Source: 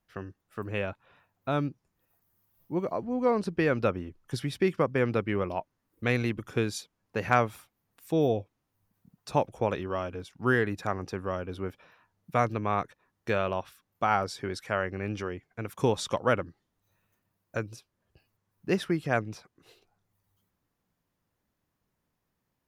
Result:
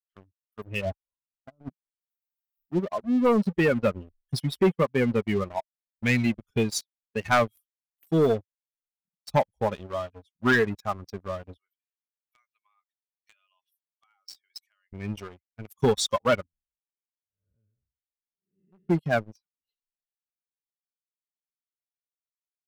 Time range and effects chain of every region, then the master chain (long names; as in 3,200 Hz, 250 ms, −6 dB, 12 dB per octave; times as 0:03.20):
0:00.81–0:01.69: low-pass filter 1,100 Hz 24 dB per octave + compressor whose output falls as the input rises −33 dBFS, ratio −0.5
0:11.56–0:14.93: Bessel high-pass filter 1,900 Hz + downward compressor 4 to 1, threshold −40 dBFS
0:16.46–0:18.89: spectrum smeared in time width 372 ms + head-to-tape spacing loss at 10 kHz 38 dB
whole clip: spectral dynamics exaggerated over time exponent 2; comb filter 4.9 ms, depth 36%; leveller curve on the samples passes 3; level −1 dB